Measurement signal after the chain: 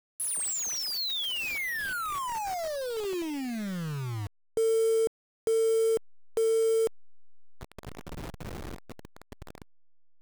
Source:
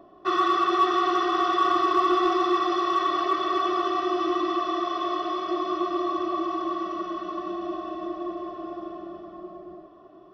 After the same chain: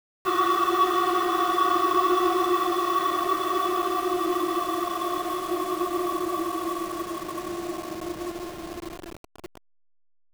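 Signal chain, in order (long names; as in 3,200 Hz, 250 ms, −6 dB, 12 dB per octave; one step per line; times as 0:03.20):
hold until the input has moved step −32.5 dBFS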